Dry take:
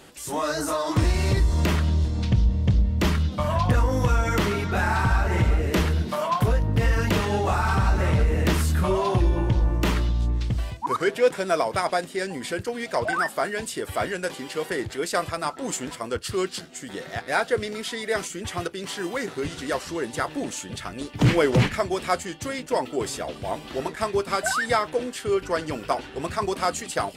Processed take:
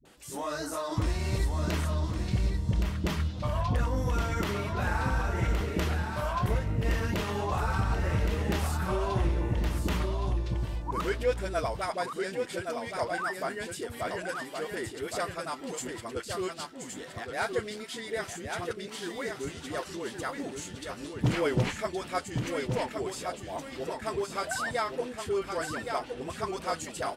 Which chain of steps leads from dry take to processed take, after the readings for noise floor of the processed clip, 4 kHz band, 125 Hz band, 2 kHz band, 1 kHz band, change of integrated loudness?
-44 dBFS, -7.0 dB, -7.0 dB, -7.0 dB, -7.0 dB, -7.0 dB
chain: phase dispersion highs, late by 53 ms, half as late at 360 Hz; on a send: delay 1118 ms -5.5 dB; on the sum: trim -8 dB

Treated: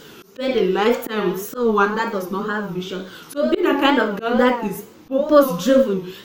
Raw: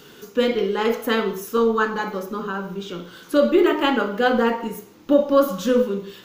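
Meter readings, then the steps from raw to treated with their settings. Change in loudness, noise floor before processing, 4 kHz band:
+1.5 dB, -47 dBFS, +1.5 dB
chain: slow attack 183 ms; wow and flutter 140 cents; trim +4 dB

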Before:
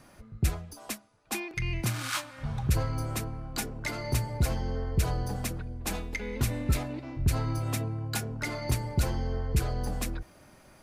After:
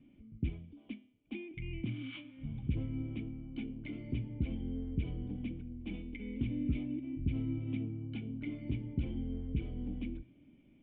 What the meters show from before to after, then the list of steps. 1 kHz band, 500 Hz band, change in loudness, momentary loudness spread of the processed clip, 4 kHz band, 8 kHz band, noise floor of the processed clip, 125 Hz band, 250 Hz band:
under -25 dB, -13.0 dB, -7.5 dB, 9 LU, -16.0 dB, under -40 dB, -63 dBFS, -8.5 dB, -1.0 dB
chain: cascade formant filter i; de-hum 126.7 Hz, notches 32; trim +3.5 dB

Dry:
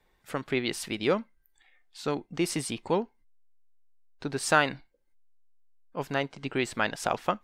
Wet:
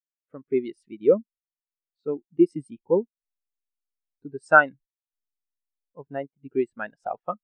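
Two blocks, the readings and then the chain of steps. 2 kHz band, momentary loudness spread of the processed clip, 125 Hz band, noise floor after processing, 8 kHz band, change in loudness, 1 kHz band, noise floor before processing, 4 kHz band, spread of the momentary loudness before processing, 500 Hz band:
+5.5 dB, 20 LU, -4.0 dB, under -85 dBFS, under -20 dB, +5.5 dB, +3.5 dB, -70 dBFS, under -20 dB, 13 LU, +6.5 dB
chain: spectral contrast expander 2.5:1; trim +7 dB

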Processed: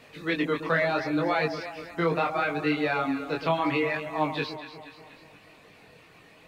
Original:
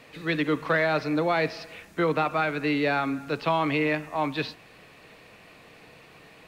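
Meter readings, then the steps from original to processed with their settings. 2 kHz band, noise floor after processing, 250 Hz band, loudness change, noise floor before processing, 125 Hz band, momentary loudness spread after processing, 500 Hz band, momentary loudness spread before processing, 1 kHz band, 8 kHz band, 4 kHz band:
-1.0 dB, -54 dBFS, -1.0 dB, -1.0 dB, -52 dBFS, -1.5 dB, 11 LU, -1.0 dB, 6 LU, -1.0 dB, no reading, -1.0 dB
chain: reverb removal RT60 1.1 s; echo whose repeats swap between lows and highs 120 ms, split 1.1 kHz, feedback 71%, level -8 dB; chorus 0.72 Hz, delay 19.5 ms, depth 4.8 ms; trim +2.5 dB

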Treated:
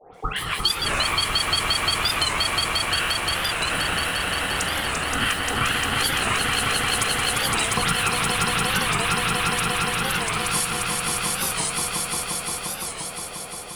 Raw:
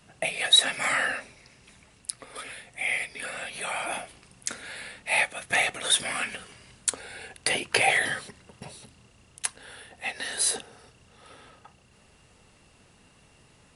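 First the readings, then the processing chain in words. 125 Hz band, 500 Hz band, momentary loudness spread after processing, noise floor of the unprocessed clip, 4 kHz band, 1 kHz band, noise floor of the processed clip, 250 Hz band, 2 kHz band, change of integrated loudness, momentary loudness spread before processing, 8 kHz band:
+19.0 dB, +6.5 dB, 5 LU, -59 dBFS, +7.0 dB, +10.5 dB, -34 dBFS, +14.5 dB, +5.0 dB, +4.5 dB, 19 LU, +6.5 dB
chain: block-companded coder 5-bit; bass shelf 480 Hz +10 dB; phase dispersion highs, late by 142 ms, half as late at 1.4 kHz; on a send: echo with a slow build-up 175 ms, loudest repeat 5, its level -3.5 dB; on the sum: compression, threshold -20 dBFS, peak gain reduction 7.5 dB; ring modulator 610 Hz; warped record 45 rpm, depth 160 cents; trim +4.5 dB

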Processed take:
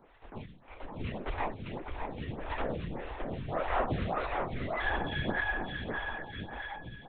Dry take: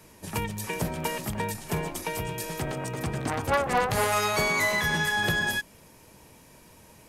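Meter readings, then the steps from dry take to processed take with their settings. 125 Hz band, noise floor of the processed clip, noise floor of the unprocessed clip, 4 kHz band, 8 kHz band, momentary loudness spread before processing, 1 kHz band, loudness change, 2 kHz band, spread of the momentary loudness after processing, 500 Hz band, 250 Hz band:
-6.5 dB, -55 dBFS, -54 dBFS, -12.0 dB, under -40 dB, 9 LU, -6.5 dB, -8.0 dB, -8.5 dB, 12 LU, -6.5 dB, -5.5 dB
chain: high-pass 58 Hz; reverb removal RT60 0.69 s; low-pass 1.8 kHz 6 dB/octave; level rider gain up to 7 dB; peak limiter -16.5 dBFS, peak gain reduction 8 dB; tremolo 0.78 Hz, depth 85%; companded quantiser 4-bit; on a send: bouncing-ball echo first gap 610 ms, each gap 0.85×, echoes 5; on the sum: LPC vocoder at 8 kHz whisper; lamp-driven phase shifter 1.7 Hz; trim -3 dB

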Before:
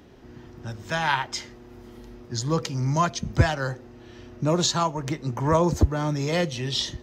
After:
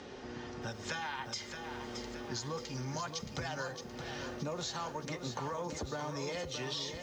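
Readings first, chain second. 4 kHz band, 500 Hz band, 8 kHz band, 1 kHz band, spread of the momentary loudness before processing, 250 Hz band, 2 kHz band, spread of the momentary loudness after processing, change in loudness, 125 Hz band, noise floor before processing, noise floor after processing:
-10.5 dB, -12.5 dB, -11.0 dB, -13.5 dB, 14 LU, -14.5 dB, -11.0 dB, 5 LU, -14.5 dB, -17.5 dB, -47 dBFS, -48 dBFS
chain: low-pass 6.9 kHz 24 dB/octave; tone controls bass -12 dB, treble +3 dB; comb of notches 330 Hz; peak limiter -22 dBFS, peak gain reduction 10 dB; compression 6:1, threshold -46 dBFS, peak gain reduction 18 dB; bit-crushed delay 622 ms, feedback 55%, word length 12-bit, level -7 dB; trim +8 dB

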